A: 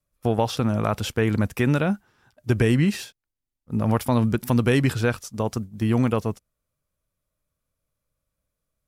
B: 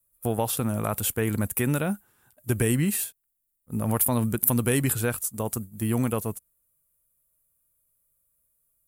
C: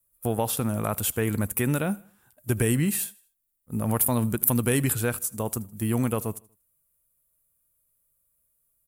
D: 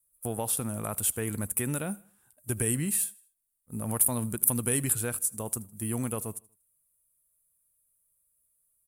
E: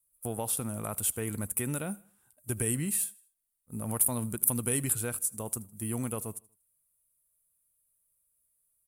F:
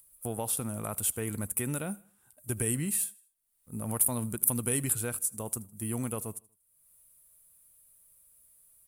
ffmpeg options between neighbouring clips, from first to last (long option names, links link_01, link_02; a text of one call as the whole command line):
ffmpeg -i in.wav -af "aexciter=amount=11.6:drive=3.9:freq=7800,volume=-4.5dB" out.wav
ffmpeg -i in.wav -af "aecho=1:1:79|158|237:0.0708|0.0297|0.0125" out.wav
ffmpeg -i in.wav -af "equalizer=frequency=9500:width=1.4:gain=11,volume=-7dB" out.wav
ffmpeg -i in.wav -af "bandreject=frequency=1700:width=21,volume=-2dB" out.wav
ffmpeg -i in.wav -af "acompressor=mode=upward:threshold=-48dB:ratio=2.5" out.wav